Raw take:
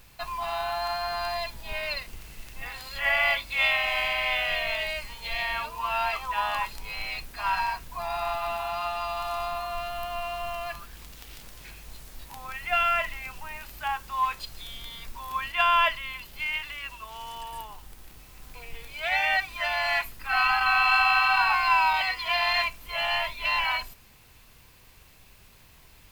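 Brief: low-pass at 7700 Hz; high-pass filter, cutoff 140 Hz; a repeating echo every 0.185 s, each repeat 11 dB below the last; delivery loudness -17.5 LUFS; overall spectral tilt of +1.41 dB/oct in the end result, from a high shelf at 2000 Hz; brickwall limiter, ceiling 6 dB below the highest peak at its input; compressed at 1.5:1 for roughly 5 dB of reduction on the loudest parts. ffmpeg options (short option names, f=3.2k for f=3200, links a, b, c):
-af "highpass=140,lowpass=7.7k,highshelf=f=2k:g=-6.5,acompressor=threshold=-34dB:ratio=1.5,alimiter=limit=-23.5dB:level=0:latency=1,aecho=1:1:185|370|555:0.282|0.0789|0.0221,volume=16.5dB"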